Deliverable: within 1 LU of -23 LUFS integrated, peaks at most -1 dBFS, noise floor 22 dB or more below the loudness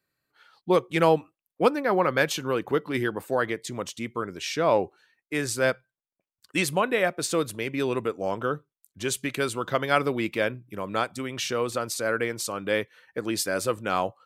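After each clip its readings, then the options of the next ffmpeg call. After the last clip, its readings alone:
loudness -27.0 LUFS; peak -6.5 dBFS; loudness target -23.0 LUFS
-> -af "volume=4dB"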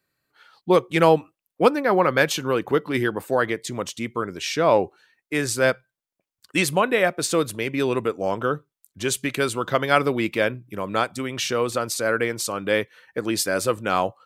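loudness -23.0 LUFS; peak -2.5 dBFS; noise floor -89 dBFS

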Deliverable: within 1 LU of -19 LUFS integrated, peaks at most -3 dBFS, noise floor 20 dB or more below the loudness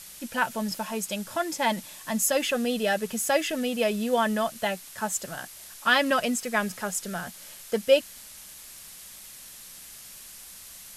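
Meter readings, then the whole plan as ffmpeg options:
noise floor -46 dBFS; noise floor target -47 dBFS; loudness -27.0 LUFS; peak -8.5 dBFS; loudness target -19.0 LUFS
-> -af "afftdn=nr=6:nf=-46"
-af "volume=8dB,alimiter=limit=-3dB:level=0:latency=1"

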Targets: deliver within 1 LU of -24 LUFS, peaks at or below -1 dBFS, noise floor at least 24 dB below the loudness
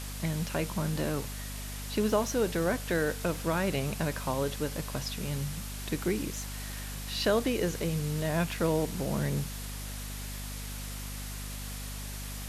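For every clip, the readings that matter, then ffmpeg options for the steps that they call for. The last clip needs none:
hum 50 Hz; harmonics up to 250 Hz; hum level -37 dBFS; noise floor -39 dBFS; noise floor target -57 dBFS; loudness -32.5 LUFS; peak -15.0 dBFS; loudness target -24.0 LUFS
-> -af "bandreject=f=50:t=h:w=4,bandreject=f=100:t=h:w=4,bandreject=f=150:t=h:w=4,bandreject=f=200:t=h:w=4,bandreject=f=250:t=h:w=4"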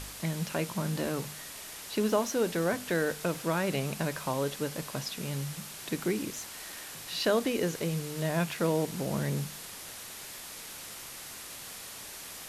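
hum none; noise floor -44 dBFS; noise floor target -57 dBFS
-> -af "afftdn=nr=13:nf=-44"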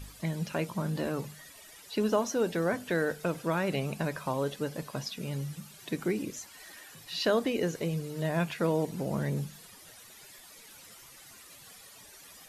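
noise floor -53 dBFS; noise floor target -56 dBFS
-> -af "afftdn=nr=6:nf=-53"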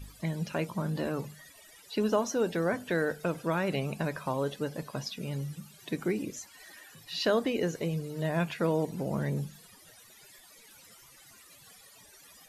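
noise floor -56 dBFS; loudness -32.0 LUFS; peak -14.5 dBFS; loudness target -24.0 LUFS
-> -af "volume=8dB"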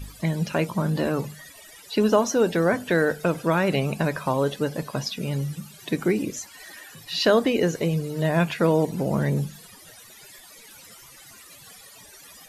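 loudness -24.0 LUFS; peak -6.5 dBFS; noise floor -48 dBFS

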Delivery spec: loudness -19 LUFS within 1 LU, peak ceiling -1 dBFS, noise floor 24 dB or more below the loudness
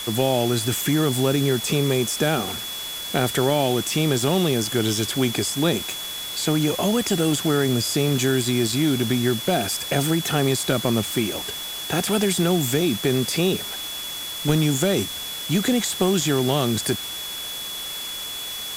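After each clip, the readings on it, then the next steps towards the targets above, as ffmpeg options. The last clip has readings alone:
steady tone 3400 Hz; tone level -31 dBFS; noise floor -32 dBFS; noise floor target -46 dBFS; loudness -22.0 LUFS; peak -5.5 dBFS; loudness target -19.0 LUFS
-> -af "bandreject=f=3.4k:w=30"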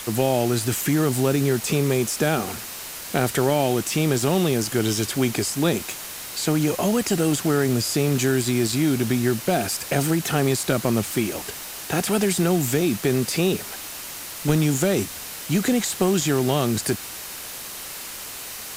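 steady tone none; noise floor -35 dBFS; noise floor target -47 dBFS
-> -af "afftdn=nr=12:nf=-35"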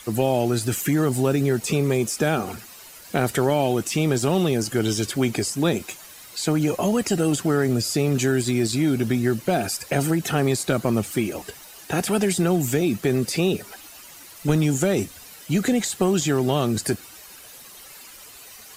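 noise floor -44 dBFS; noise floor target -47 dBFS
-> -af "afftdn=nr=6:nf=-44"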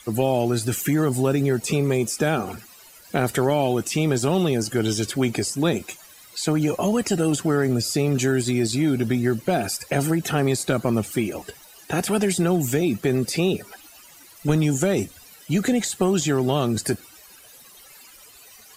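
noise floor -48 dBFS; loudness -22.5 LUFS; peak -6.5 dBFS; loudness target -19.0 LUFS
-> -af "volume=3.5dB"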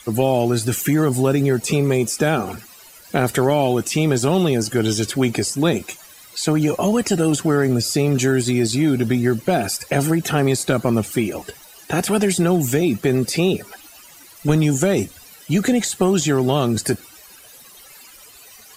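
loudness -19.0 LUFS; peak -3.0 dBFS; noise floor -45 dBFS

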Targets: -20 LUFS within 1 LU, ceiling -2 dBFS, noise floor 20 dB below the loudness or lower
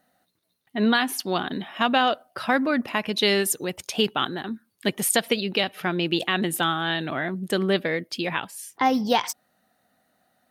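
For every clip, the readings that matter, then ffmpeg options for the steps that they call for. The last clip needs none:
loudness -24.5 LUFS; peak -8.5 dBFS; loudness target -20.0 LUFS
-> -af "volume=4.5dB"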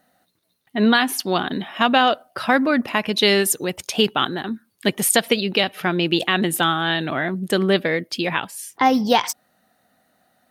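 loudness -20.0 LUFS; peak -4.0 dBFS; noise floor -67 dBFS

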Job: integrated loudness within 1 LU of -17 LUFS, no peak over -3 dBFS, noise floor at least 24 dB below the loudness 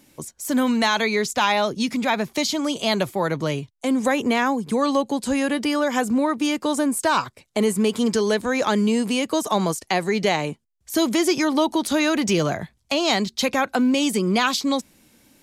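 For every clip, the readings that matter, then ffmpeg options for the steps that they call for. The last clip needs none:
loudness -22.0 LUFS; peak -9.0 dBFS; loudness target -17.0 LUFS
-> -af "volume=5dB"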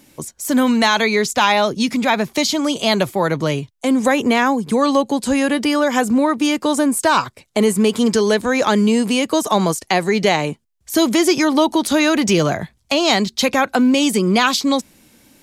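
loudness -17.0 LUFS; peak -4.0 dBFS; noise floor -60 dBFS

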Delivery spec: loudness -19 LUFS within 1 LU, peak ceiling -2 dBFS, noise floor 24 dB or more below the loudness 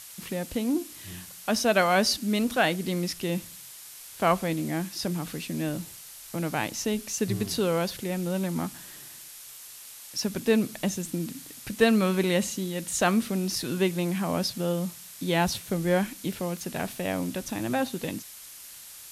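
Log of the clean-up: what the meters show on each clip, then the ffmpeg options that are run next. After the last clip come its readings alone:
noise floor -45 dBFS; noise floor target -52 dBFS; loudness -28.0 LUFS; peak -7.0 dBFS; loudness target -19.0 LUFS
-> -af "afftdn=nr=7:nf=-45"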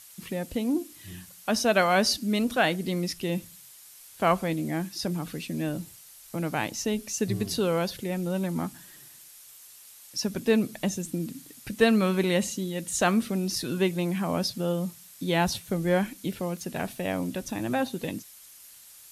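noise floor -50 dBFS; noise floor target -52 dBFS
-> -af "afftdn=nr=6:nf=-50"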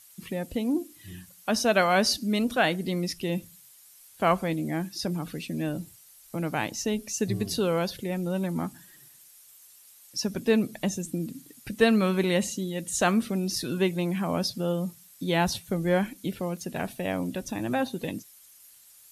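noise floor -54 dBFS; loudness -28.0 LUFS; peak -7.0 dBFS; loudness target -19.0 LUFS
-> -af "volume=9dB,alimiter=limit=-2dB:level=0:latency=1"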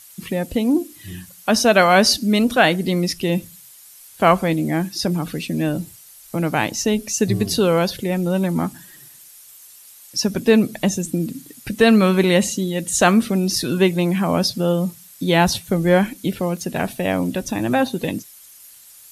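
loudness -19.0 LUFS; peak -2.0 dBFS; noise floor -45 dBFS

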